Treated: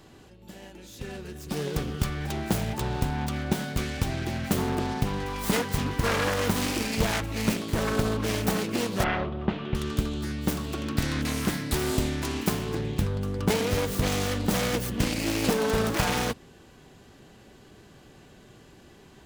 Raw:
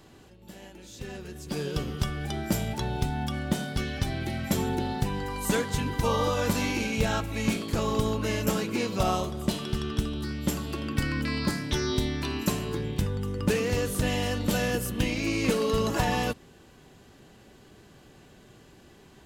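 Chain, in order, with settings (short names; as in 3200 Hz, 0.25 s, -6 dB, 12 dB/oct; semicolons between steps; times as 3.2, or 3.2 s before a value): self-modulated delay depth 0.71 ms; 9.04–9.75 LPF 3000 Hz 24 dB/oct; gain +1.5 dB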